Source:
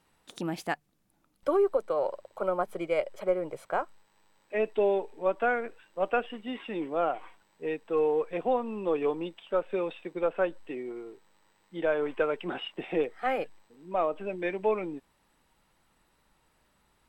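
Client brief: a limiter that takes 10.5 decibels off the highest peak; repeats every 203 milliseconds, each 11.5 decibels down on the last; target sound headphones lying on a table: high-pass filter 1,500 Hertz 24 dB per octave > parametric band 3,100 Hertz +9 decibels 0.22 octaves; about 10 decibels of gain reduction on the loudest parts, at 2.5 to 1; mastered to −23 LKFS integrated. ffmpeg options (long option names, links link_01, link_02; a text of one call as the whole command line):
ffmpeg -i in.wav -af "acompressor=threshold=-37dB:ratio=2.5,alimiter=level_in=8.5dB:limit=-24dB:level=0:latency=1,volume=-8.5dB,highpass=frequency=1500:width=0.5412,highpass=frequency=1500:width=1.3066,equalizer=frequency=3100:width_type=o:width=0.22:gain=9,aecho=1:1:203|406|609:0.266|0.0718|0.0194,volume=27dB" out.wav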